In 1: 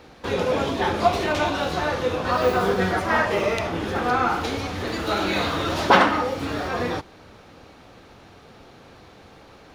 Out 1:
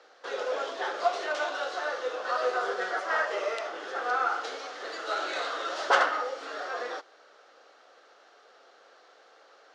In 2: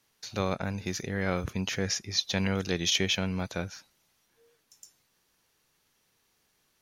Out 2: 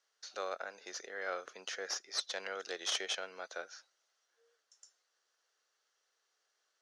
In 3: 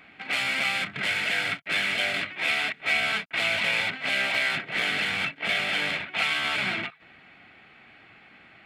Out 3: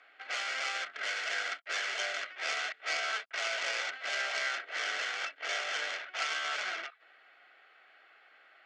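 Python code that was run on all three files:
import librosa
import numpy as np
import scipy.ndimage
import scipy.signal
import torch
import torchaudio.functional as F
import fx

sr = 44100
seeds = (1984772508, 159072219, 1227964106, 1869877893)

y = fx.tracing_dist(x, sr, depth_ms=0.077)
y = fx.cabinet(y, sr, low_hz=480.0, low_slope=24, high_hz=7200.0, hz=(930.0, 1400.0, 2400.0, 3700.0), db=(-7, 4, -8, -3))
y = F.gain(torch.from_numpy(y), -5.5).numpy()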